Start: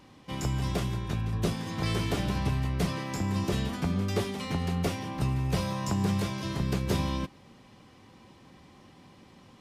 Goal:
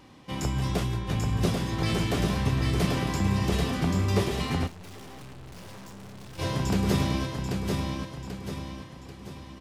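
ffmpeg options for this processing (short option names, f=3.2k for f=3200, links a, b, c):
-filter_complex "[0:a]aecho=1:1:788|1576|2364|3152|3940|4728:0.668|0.301|0.135|0.0609|0.0274|0.0123,asplit=3[a][b][c];[a]afade=t=out:st=4.66:d=0.02[d];[b]aeval=exprs='(tanh(200*val(0)+0.6)-tanh(0.6))/200':c=same,afade=t=in:st=4.66:d=0.02,afade=t=out:st=6.38:d=0.02[e];[c]afade=t=in:st=6.38:d=0.02[f];[d][e][f]amix=inputs=3:normalize=0,flanger=delay=2.4:depth=9.5:regen=-70:speed=1.1:shape=sinusoidal,volume=6.5dB"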